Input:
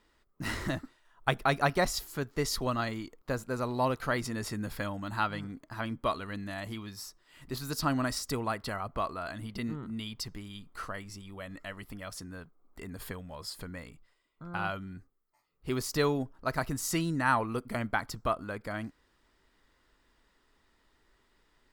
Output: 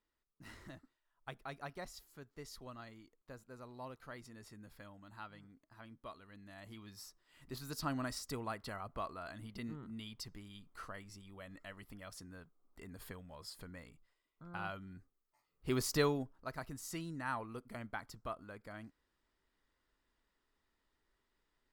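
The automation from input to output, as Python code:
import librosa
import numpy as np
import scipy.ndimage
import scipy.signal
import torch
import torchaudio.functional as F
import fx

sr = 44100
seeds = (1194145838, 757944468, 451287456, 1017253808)

y = fx.gain(x, sr, db=fx.line((6.27, -19.5), (7.01, -9.0), (14.81, -9.0), (15.89, -1.5), (16.53, -13.0)))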